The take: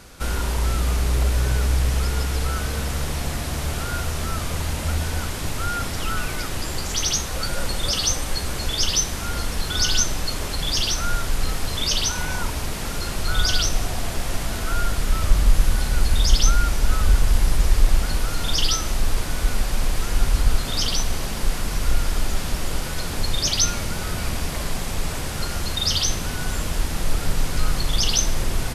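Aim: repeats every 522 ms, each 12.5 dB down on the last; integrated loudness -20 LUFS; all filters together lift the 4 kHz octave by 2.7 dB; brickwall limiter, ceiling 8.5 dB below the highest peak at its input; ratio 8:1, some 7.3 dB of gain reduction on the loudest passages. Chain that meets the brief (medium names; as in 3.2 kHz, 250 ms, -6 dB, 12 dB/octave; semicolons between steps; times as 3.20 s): peaking EQ 4 kHz +3.5 dB; compression 8:1, threshold -16 dBFS; peak limiter -15.5 dBFS; feedback delay 522 ms, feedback 24%, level -12.5 dB; trim +6.5 dB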